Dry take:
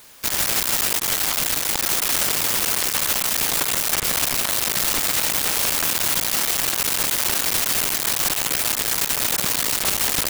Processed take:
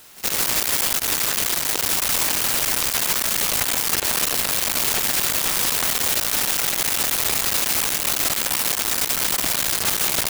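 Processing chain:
echo ahead of the sound 74 ms −20.5 dB
ring modulator with a square carrier 440 Hz

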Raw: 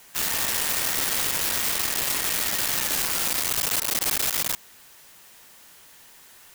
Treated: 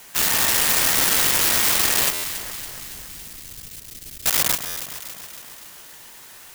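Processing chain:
0:02.10–0:04.26: guitar amp tone stack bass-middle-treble 10-0-1
delay that swaps between a low-pass and a high-pass 140 ms, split 1,900 Hz, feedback 77%, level −8.5 dB
buffer that repeats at 0:02.13/0:04.66, samples 512, times 8
level +6 dB

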